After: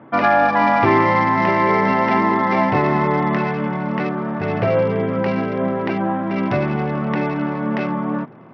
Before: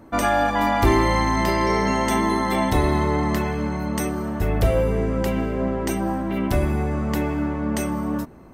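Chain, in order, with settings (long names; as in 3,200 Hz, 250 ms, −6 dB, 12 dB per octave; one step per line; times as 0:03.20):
Chebyshev band-pass filter 120–2,600 Hz, order 4
parametric band 290 Hz −5 dB 0.98 octaves
level +6.5 dB
SBC 64 kbit/s 44,100 Hz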